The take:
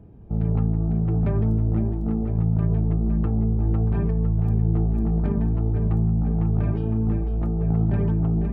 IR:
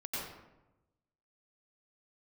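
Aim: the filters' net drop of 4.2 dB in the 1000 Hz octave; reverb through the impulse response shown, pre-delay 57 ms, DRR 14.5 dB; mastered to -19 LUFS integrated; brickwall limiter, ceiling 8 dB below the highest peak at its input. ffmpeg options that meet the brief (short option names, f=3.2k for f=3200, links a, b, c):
-filter_complex "[0:a]equalizer=f=1k:t=o:g=-6,alimiter=limit=-19.5dB:level=0:latency=1,asplit=2[a][b];[1:a]atrim=start_sample=2205,adelay=57[c];[b][c]afir=irnorm=-1:irlink=0,volume=-17dB[d];[a][d]amix=inputs=2:normalize=0,volume=8dB"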